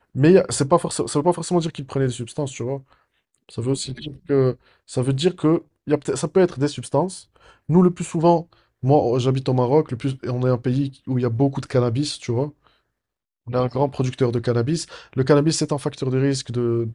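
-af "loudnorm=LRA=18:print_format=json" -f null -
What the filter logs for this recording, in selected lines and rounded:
"input_i" : "-21.4",
"input_tp" : "-2.8",
"input_lra" : "3.8",
"input_thresh" : "-31.8",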